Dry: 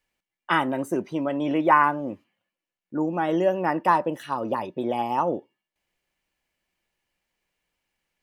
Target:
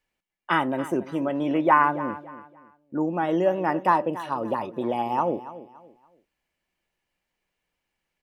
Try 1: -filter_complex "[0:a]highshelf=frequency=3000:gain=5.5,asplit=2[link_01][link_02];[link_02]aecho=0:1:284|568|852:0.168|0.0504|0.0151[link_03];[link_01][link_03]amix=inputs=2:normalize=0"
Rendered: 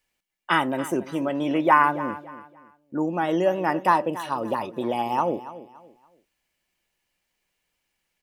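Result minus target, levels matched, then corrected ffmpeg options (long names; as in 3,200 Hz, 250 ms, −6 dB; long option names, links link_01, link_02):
8,000 Hz band +7.5 dB
-filter_complex "[0:a]highshelf=frequency=3000:gain=-4,asplit=2[link_01][link_02];[link_02]aecho=0:1:284|568|852:0.168|0.0504|0.0151[link_03];[link_01][link_03]amix=inputs=2:normalize=0"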